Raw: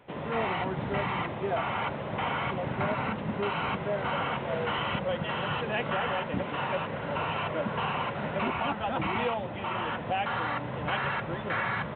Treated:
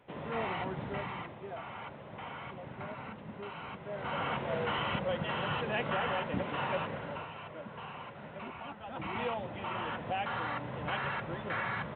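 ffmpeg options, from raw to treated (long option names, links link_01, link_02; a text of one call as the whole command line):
ffmpeg -i in.wav -af "volume=13.5dB,afade=type=out:start_time=0.7:duration=0.7:silence=0.421697,afade=type=in:start_time=3.83:duration=0.49:silence=0.316228,afade=type=out:start_time=6.84:duration=0.45:silence=0.281838,afade=type=in:start_time=8.85:duration=0.46:silence=0.354813" out.wav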